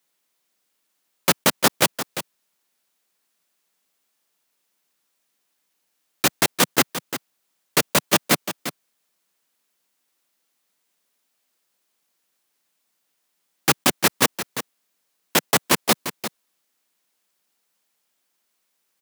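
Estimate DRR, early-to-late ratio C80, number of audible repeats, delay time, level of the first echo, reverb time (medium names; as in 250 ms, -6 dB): no reverb, no reverb, 1, 347 ms, -11.0 dB, no reverb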